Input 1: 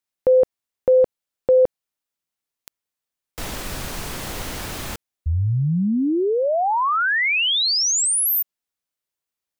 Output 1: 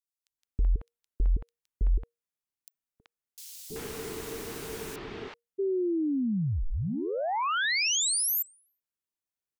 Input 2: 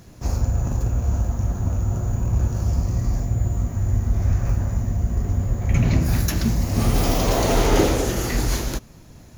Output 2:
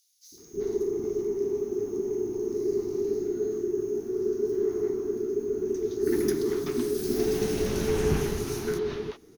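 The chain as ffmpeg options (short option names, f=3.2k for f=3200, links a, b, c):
-filter_complex "[0:a]acrossover=split=810|4400[a][b][c];[a]adelay=320[d];[b]adelay=380[e];[d][e][c]amix=inputs=3:normalize=0,afreqshift=-470,volume=-8dB"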